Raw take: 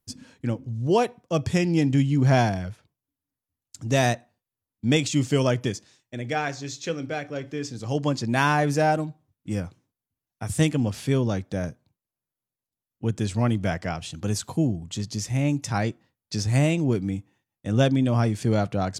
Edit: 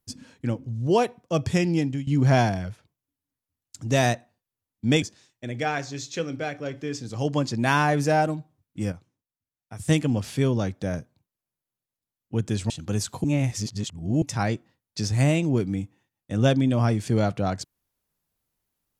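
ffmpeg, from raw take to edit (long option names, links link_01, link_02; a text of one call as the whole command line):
ffmpeg -i in.wav -filter_complex "[0:a]asplit=8[link_01][link_02][link_03][link_04][link_05][link_06][link_07][link_08];[link_01]atrim=end=2.07,asetpts=PTS-STARTPTS,afade=type=out:start_time=1.69:duration=0.38:silence=0.141254[link_09];[link_02]atrim=start=2.07:end=5.022,asetpts=PTS-STARTPTS,afade=type=in:duration=0.004:curve=hsin:silence=0.141254[link_10];[link_03]atrim=start=5.718:end=9.622[link_11];[link_04]atrim=start=9.618:end=10.582,asetpts=PTS-STARTPTS,volume=-7.5dB[link_12];[link_05]atrim=start=10.578:end=13.402[link_13];[link_06]atrim=start=14.048:end=14.592[link_14];[link_07]atrim=start=14.588:end=15.572,asetpts=PTS-STARTPTS,areverse[link_15];[link_08]atrim=start=15.568[link_16];[link_09][link_10]concat=n=2:v=0:a=1[link_17];[link_17][link_11]acrossfade=duration=0.004:curve1=hsin:curve2=hsin[link_18];[link_18][link_12]acrossfade=duration=0.004:curve1=hsin:curve2=hsin[link_19];[link_19][link_13]acrossfade=duration=0.004:curve1=hsin:curve2=hsin[link_20];[link_20][link_14]acrossfade=duration=0.004:curve1=hsin:curve2=hsin[link_21];[link_21][link_15]acrossfade=duration=0.004:curve1=hsin:curve2=hsin[link_22];[link_22][link_16]acrossfade=duration=0.004:curve1=hsin:curve2=hsin" out.wav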